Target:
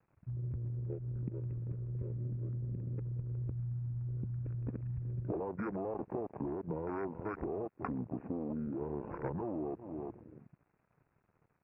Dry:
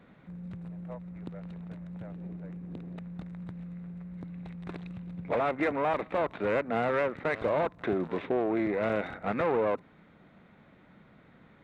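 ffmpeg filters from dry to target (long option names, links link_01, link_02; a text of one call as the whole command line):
ffmpeg -i in.wav -af "aecho=1:1:359|718|1077:0.119|0.0357|0.0107,alimiter=limit=-24dB:level=0:latency=1:release=57,acompressor=threshold=-40dB:ratio=10,aresample=8000,aeval=exprs='sgn(val(0))*max(abs(val(0))-0.00141,0)':channel_layout=same,aresample=44100,afwtdn=0.00398,asetrate=30296,aresample=44100,atempo=1.45565,volume=7dB" out.wav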